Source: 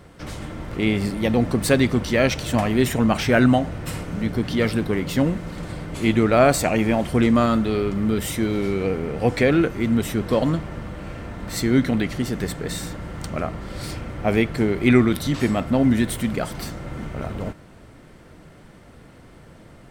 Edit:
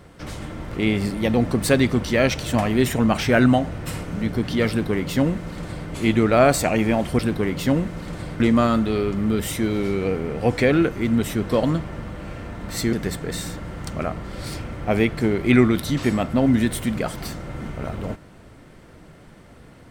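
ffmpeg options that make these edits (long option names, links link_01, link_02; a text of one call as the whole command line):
ffmpeg -i in.wav -filter_complex "[0:a]asplit=4[link_01][link_02][link_03][link_04];[link_01]atrim=end=7.192[link_05];[link_02]atrim=start=4.688:end=5.902[link_06];[link_03]atrim=start=7.188:end=11.722[link_07];[link_04]atrim=start=12.298[link_08];[link_05][link_06]acrossfade=duration=0.004:curve1=hsin:curve2=hsin[link_09];[link_09][link_07]acrossfade=duration=0.004:curve1=hsin:curve2=hsin[link_10];[link_10][link_08]acrossfade=duration=0.004:curve1=hsin:curve2=hsin" out.wav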